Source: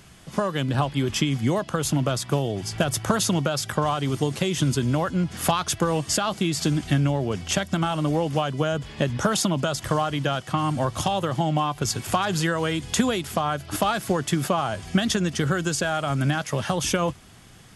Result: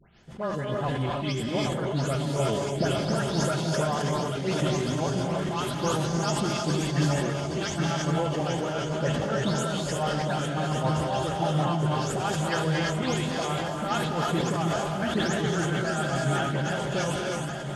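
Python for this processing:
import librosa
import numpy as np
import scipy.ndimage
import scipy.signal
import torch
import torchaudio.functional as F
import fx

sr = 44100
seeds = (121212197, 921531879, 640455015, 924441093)

y = fx.spec_delay(x, sr, highs='late', ms=232)
y = fx.high_shelf(y, sr, hz=4900.0, db=-6.0)
y = fx.hum_notches(y, sr, base_hz=60, count=3)
y = fx.echo_swing(y, sr, ms=1379, ratio=1.5, feedback_pct=54, wet_db=-8.5)
y = fx.tremolo_shape(y, sr, shape='triangle', hz=7.2, depth_pct=85)
y = fx.peak_eq(y, sr, hz=11000.0, db=-9.5, octaves=0.21)
y = fx.notch(y, sr, hz=1100.0, q=8.7)
y = fx.rev_gated(y, sr, seeds[0], gate_ms=360, shape='rising', drr_db=0.5)
y = fx.sustainer(y, sr, db_per_s=23.0)
y = y * librosa.db_to_amplitude(-3.0)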